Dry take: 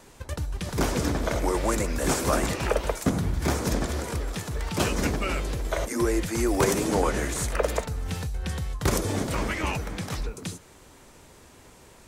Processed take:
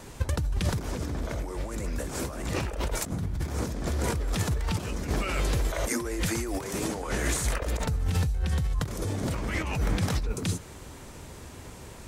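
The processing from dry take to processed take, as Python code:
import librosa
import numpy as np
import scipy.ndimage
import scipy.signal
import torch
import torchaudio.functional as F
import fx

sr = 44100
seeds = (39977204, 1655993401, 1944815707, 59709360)

y = fx.low_shelf(x, sr, hz=450.0, db=-7.0, at=(5.09, 7.66))
y = fx.over_compress(y, sr, threshold_db=-33.0, ratio=-1.0)
y = fx.peak_eq(y, sr, hz=81.0, db=7.0, octaves=2.6)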